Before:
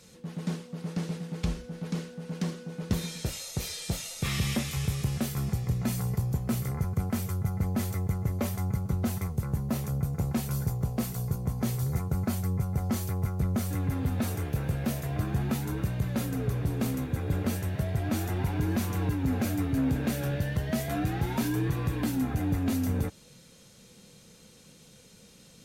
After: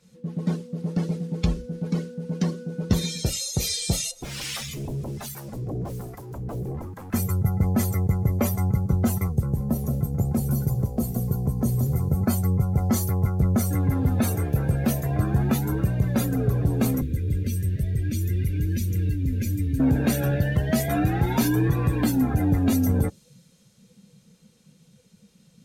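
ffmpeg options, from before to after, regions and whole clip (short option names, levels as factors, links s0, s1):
-filter_complex "[0:a]asettb=1/sr,asplit=3[s0][s1][s2];[s0]atrim=end=4.114[s3];[s1]atrim=start=4.11:end=7.14,asetpts=PTS-STARTPTS,afade=t=in:d=0.004:c=qsin,afade=t=out:st=3.026:d=0.004:c=qsin,aeval=exprs='0.0282*(abs(mod(val(0)/0.0282+3,4)-2)-1)':c=same,acrossover=split=870[s4][s5];[s4]aeval=exprs='val(0)*(1-0.7/2+0.7/2*cos(2*PI*1.2*n/s))':c=same[s6];[s5]aeval=exprs='val(0)*(1-0.7/2-0.7/2*cos(2*PI*1.2*n/s))':c=same[s7];[s6][s7]amix=inputs=2:normalize=0[s8];[s2]atrim=start=7.136[s9];[s3][s8]acrossfade=d=0.004:c1=hsin:c2=qsin[s10];[s10][s9]acrossfade=d=0.004:c1=qsin:c2=hsin,asettb=1/sr,asplit=3[s11][s12][s13];[s11]atrim=end=9.404[s14];[s12]atrim=start=9.4:end=12.21,asetpts=PTS-STARTPTS,afade=t=in:d=0.004:c=qsin,afade=t=out:st=2.806:d=0.004:c=qsin,acrossover=split=630|6000[s15][s16][s17];[s15]acompressor=threshold=0.0447:ratio=4[s18];[s16]acompressor=threshold=0.00398:ratio=4[s19];[s17]acompressor=threshold=0.00708:ratio=4[s20];[s18][s19][s20]amix=inputs=3:normalize=0,aecho=1:1:179:0.473,atrim=end_sample=123921[s21];[s13]atrim=start=12.206[s22];[s14][s21]acrossfade=d=0.004:c1=hsin:c2=qsin[s23];[s23][s22]acrossfade=d=0.004:c1=qsin:c2=hsin,asettb=1/sr,asplit=3[s24][s25][s26];[s24]atrim=end=17.014[s27];[s25]atrim=start=17.01:end=19.8,asetpts=PTS-STARTPTS,afade=t=in:d=0.004:c=qsin,afade=t=out:st=2.786:d=0.004:c=qsin,asuperstop=centerf=890:order=4:qfactor=0.8,acrossover=split=89|290|1800[s28][s29][s30][s31];[s28]acompressor=threshold=0.01:ratio=3[s32];[s29]acompressor=threshold=0.00794:ratio=3[s33];[s30]acompressor=threshold=0.00316:ratio=3[s34];[s31]acompressor=threshold=0.00794:ratio=3[s35];[s32][s33][s34][s35]amix=inputs=4:normalize=0,lowshelf=f=92:g=11[s36];[s26]atrim=start=19.796[s37];[s27][s36]acrossfade=d=0.004:c1=hsin:c2=qsin[s38];[s38][s37]acrossfade=d=0.004:c1=qsin:c2=hsin,afftdn=nr=15:nf=-42,adynamicequalizer=threshold=0.00141:dfrequency=3600:dqfactor=0.7:tfrequency=3600:tqfactor=0.7:attack=5:release=100:ratio=0.375:range=3.5:mode=boostabove:tftype=highshelf,volume=2.24"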